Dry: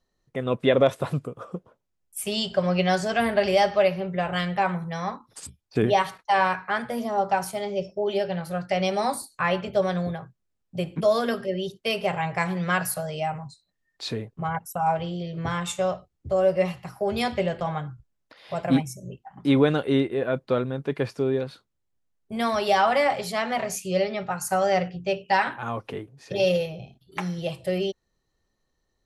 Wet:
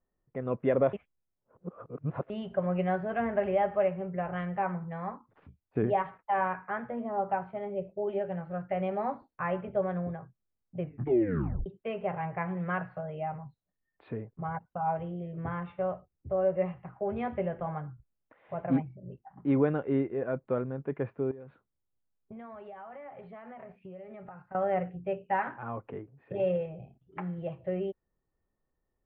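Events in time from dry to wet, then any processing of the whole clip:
0:00.93–0:02.30: reverse
0:10.80: tape stop 0.86 s
0:21.31–0:24.55: downward compressor 12 to 1, threshold −35 dBFS
whole clip: Bessel low-pass filter 1,400 Hz, order 8; level −6 dB

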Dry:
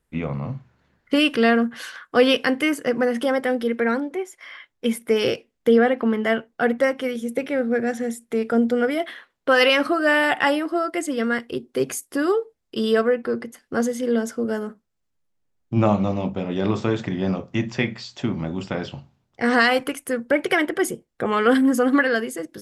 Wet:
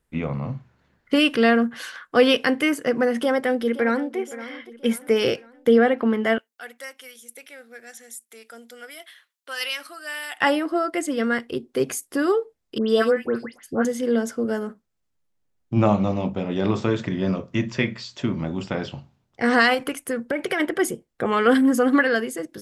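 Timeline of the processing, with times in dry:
0:03.15–0:04.17: delay throw 520 ms, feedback 45%, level −15 dB
0:06.38–0:10.41: first difference
0:12.78–0:13.85: all-pass dispersion highs, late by 116 ms, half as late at 2,100 Hz
0:16.86–0:18.41: Butterworth band-reject 780 Hz, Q 5
0:19.74–0:20.60: downward compressor 4 to 1, threshold −20 dBFS

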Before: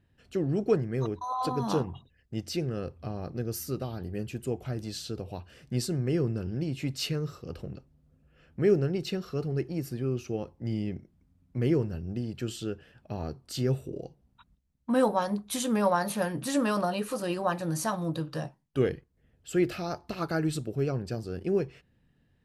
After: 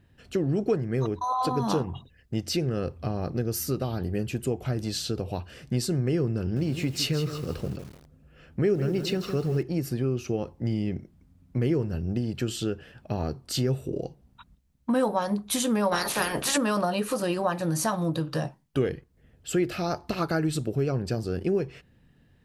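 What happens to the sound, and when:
0:06.40–0:09.63: feedback echo at a low word length 161 ms, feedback 35%, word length 8 bits, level −10 dB
0:15.91–0:16.56: ceiling on every frequency bin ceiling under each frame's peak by 23 dB
whole clip: downward compressor 2.5 to 1, threshold −32 dBFS; level +7.5 dB

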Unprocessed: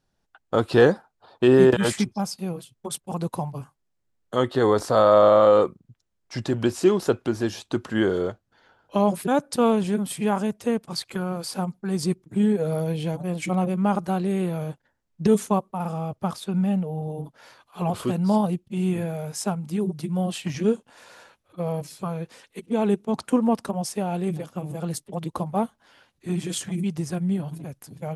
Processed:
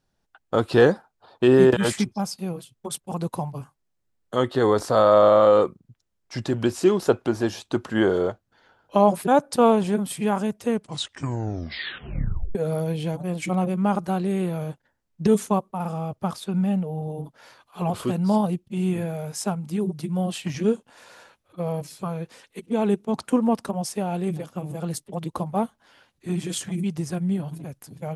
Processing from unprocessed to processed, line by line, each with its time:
0:07.00–0:10.00: dynamic equaliser 770 Hz, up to +6 dB, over −35 dBFS, Q 1
0:10.70: tape stop 1.85 s

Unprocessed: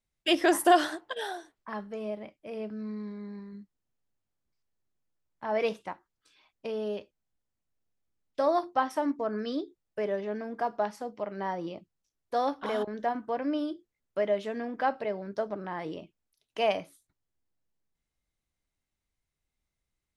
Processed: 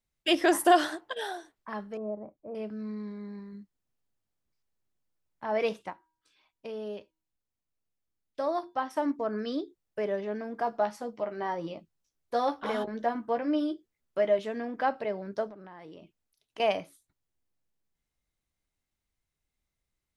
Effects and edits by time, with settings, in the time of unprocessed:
0:01.97–0:02.55: low-pass filter 1,100 Hz 24 dB per octave
0:05.90–0:08.97: tuned comb filter 320 Hz, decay 0.53 s, harmonics odd, mix 40%
0:10.66–0:14.39: double-tracking delay 13 ms −6 dB
0:15.49–0:16.60: downward compressor 4 to 1, threshold −45 dBFS

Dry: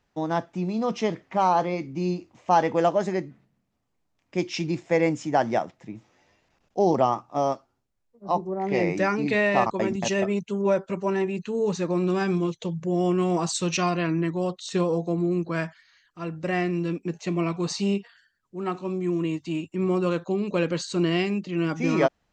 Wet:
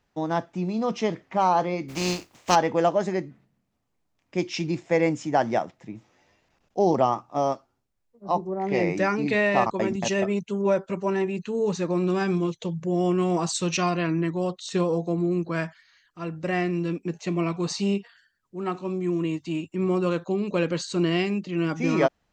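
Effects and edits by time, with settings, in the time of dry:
0:01.88–0:02.54: compressing power law on the bin magnitudes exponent 0.5

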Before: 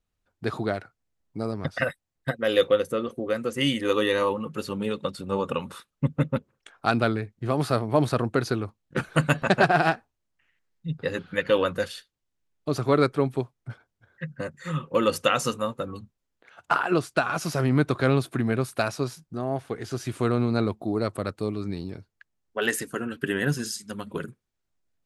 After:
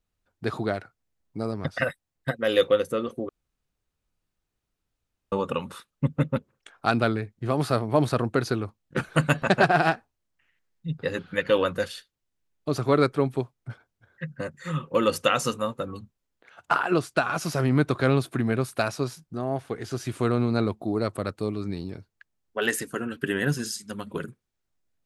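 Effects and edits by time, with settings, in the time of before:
0:03.29–0:05.32: fill with room tone

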